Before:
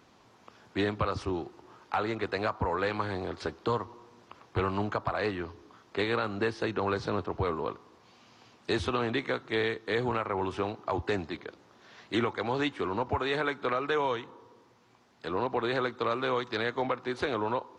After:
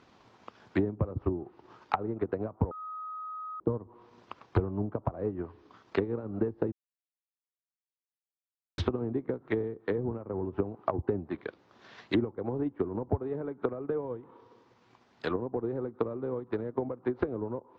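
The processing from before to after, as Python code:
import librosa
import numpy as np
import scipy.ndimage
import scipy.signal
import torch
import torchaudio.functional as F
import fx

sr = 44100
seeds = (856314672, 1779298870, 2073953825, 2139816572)

y = fx.edit(x, sr, fx.bleep(start_s=2.71, length_s=0.89, hz=1260.0, db=-17.0),
    fx.silence(start_s=6.72, length_s=2.06), tone=tone)
y = scipy.signal.sosfilt(scipy.signal.butter(2, 5400.0, 'lowpass', fs=sr, output='sos'), y)
y = fx.env_lowpass_down(y, sr, base_hz=410.0, full_db=-27.5)
y = fx.transient(y, sr, attack_db=6, sustain_db=-5)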